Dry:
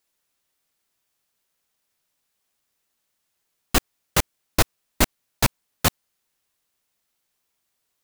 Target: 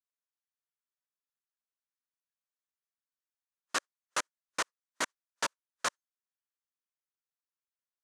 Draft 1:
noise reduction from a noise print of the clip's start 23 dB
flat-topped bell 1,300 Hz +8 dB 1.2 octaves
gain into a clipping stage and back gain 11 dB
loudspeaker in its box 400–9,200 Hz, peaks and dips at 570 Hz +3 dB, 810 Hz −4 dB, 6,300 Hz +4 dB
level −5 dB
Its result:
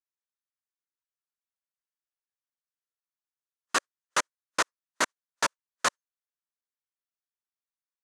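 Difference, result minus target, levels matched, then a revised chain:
gain into a clipping stage and back: distortion −7 dB
noise reduction from a noise print of the clip's start 23 dB
flat-topped bell 1,300 Hz +8 dB 1.2 octaves
gain into a clipping stage and back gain 20 dB
loudspeaker in its box 400–9,200 Hz, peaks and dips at 570 Hz +3 dB, 810 Hz −4 dB, 6,300 Hz +4 dB
level −5 dB

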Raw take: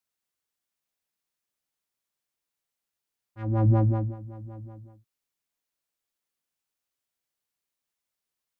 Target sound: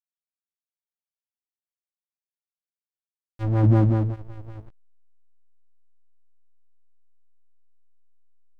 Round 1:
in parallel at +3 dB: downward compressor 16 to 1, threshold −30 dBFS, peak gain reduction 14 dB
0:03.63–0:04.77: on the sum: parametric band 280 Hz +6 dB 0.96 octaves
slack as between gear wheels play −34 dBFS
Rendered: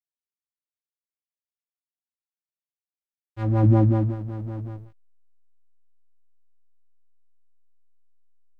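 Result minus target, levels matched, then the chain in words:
slack as between gear wheels: distortion −10 dB
in parallel at +3 dB: downward compressor 16 to 1, threshold −30 dBFS, peak gain reduction 14 dB
0:03.63–0:04.77: on the sum: parametric band 280 Hz +6 dB 0.96 octaves
slack as between gear wheels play −22 dBFS

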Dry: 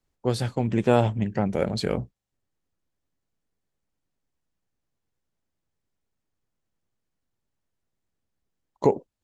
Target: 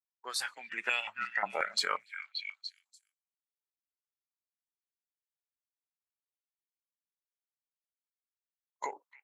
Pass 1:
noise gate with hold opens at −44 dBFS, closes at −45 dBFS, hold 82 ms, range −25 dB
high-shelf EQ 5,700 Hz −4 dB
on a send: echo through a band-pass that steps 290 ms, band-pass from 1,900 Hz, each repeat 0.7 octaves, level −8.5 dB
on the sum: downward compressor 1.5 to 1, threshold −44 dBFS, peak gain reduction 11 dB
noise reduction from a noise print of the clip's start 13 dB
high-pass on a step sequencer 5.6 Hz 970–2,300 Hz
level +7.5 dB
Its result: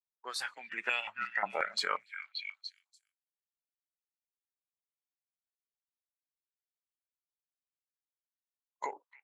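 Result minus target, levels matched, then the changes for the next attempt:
8,000 Hz band −4.5 dB
change: high-shelf EQ 5,700 Hz +4.5 dB

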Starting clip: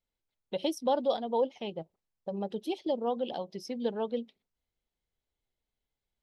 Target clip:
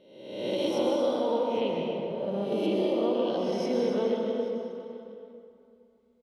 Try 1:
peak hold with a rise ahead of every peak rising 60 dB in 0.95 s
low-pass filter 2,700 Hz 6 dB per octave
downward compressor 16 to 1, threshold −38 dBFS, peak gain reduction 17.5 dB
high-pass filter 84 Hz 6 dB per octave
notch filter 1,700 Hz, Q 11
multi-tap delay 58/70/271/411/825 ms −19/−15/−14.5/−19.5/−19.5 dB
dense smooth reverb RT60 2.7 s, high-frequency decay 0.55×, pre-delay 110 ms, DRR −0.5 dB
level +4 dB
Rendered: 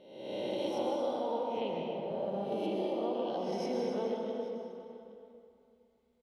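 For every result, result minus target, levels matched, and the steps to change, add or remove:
downward compressor: peak gain reduction +9 dB; 1,000 Hz band +4.0 dB
change: downward compressor 16 to 1, threshold −28.5 dBFS, peak gain reduction 8.5 dB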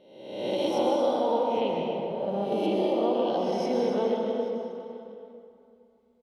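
1,000 Hz band +4.5 dB
add after high-pass filter: parametric band 790 Hz −9 dB 0.44 octaves

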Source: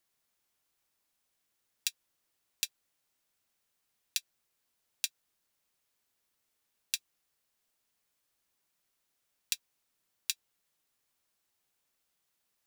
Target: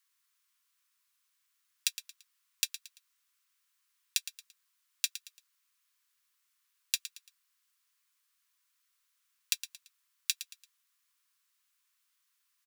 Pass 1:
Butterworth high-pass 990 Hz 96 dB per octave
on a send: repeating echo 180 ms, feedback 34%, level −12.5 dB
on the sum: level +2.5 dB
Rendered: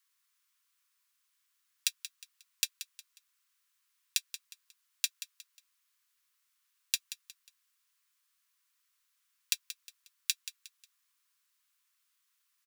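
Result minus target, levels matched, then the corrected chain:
echo 67 ms late
Butterworth high-pass 990 Hz 96 dB per octave
on a send: repeating echo 113 ms, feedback 34%, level −12.5 dB
on the sum: level +2.5 dB

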